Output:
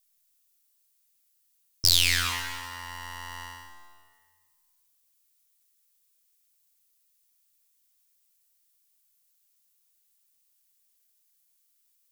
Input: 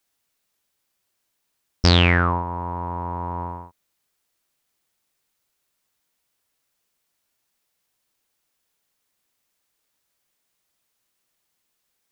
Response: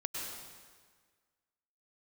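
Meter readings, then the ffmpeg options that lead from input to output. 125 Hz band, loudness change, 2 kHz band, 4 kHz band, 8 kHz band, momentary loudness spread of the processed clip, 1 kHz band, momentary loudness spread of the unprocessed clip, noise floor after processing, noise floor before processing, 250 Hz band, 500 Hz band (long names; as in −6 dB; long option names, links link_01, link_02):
−17.5 dB, −4.5 dB, −5.5 dB, +0.5 dB, can't be measured, 20 LU, −13.5 dB, 16 LU, −70 dBFS, −76 dBFS, −23.5 dB, −23.5 dB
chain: -filter_complex "[0:a]aeval=exprs='abs(val(0))':channel_layout=same,crystalizer=i=9.5:c=0,asplit=2[link_01][link_02];[1:a]atrim=start_sample=2205,adelay=73[link_03];[link_02][link_03]afir=irnorm=-1:irlink=0,volume=-9dB[link_04];[link_01][link_04]amix=inputs=2:normalize=0,volume=-14dB"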